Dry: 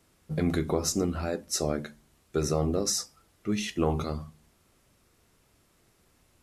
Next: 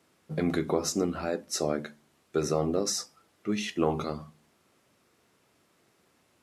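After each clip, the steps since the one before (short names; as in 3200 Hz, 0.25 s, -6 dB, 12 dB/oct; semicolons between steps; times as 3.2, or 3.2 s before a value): Bessel high-pass 200 Hz, order 2; high shelf 6000 Hz -7.5 dB; gain +1.5 dB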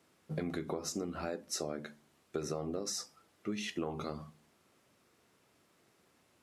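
compressor 6:1, threshold -31 dBFS, peak gain reduction 10.5 dB; gain -2.5 dB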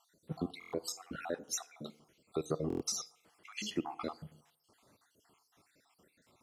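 random spectral dropouts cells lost 60%; FDN reverb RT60 0.84 s, low-frequency decay 0.75×, high-frequency decay 0.55×, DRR 17 dB; stuck buffer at 0.59/2.68, samples 1024, times 5; gain +4 dB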